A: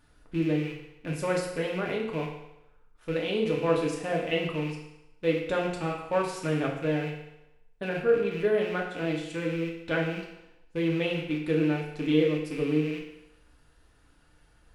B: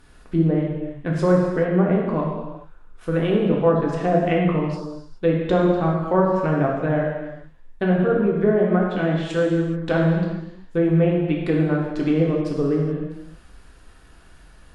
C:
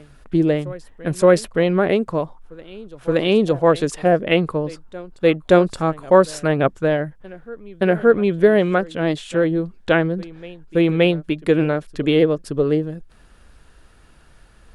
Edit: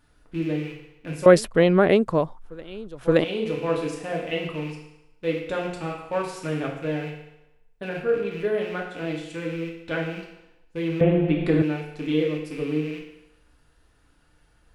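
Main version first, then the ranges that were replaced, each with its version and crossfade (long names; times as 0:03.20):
A
0:01.26–0:03.24: punch in from C
0:11.01–0:11.62: punch in from B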